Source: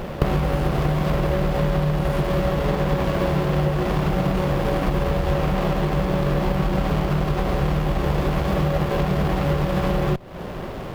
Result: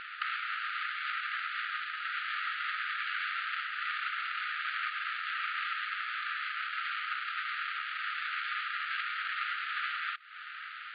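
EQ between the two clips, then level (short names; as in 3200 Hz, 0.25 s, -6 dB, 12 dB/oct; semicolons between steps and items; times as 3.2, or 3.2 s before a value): brick-wall FIR band-pass 1200–4800 Hz; air absorption 280 m; +3.5 dB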